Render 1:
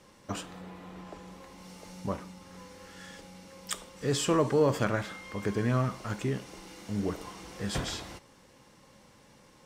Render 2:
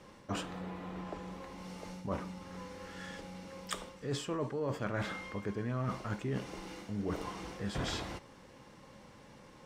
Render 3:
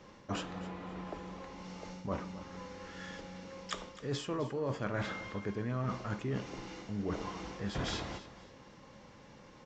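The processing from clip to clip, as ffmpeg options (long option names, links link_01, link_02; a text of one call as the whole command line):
ffmpeg -i in.wav -af "highshelf=frequency=4800:gain=-10,areverse,acompressor=threshold=-35dB:ratio=16,areverse,volume=3dB" out.wav
ffmpeg -i in.wav -af "aecho=1:1:260|520|780:0.168|0.0487|0.0141,aresample=16000,aresample=44100" out.wav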